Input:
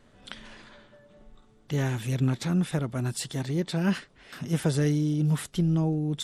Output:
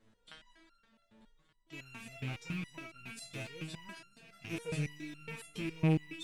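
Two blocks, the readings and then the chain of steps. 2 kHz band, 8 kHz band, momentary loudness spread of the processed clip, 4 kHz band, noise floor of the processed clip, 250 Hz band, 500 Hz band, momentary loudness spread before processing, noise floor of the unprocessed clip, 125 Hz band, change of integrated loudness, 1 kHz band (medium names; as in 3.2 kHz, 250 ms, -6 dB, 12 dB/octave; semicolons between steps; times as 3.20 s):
-5.5 dB, -14.0 dB, 21 LU, -10.0 dB, -73 dBFS, -12.5 dB, -11.5 dB, 16 LU, -59 dBFS, -13.0 dB, -12.0 dB, -10.5 dB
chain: rattle on loud lows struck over -35 dBFS, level -22 dBFS; multi-head delay 235 ms, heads first and second, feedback 71%, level -19 dB; resonator arpeggio 7.2 Hz 110–1400 Hz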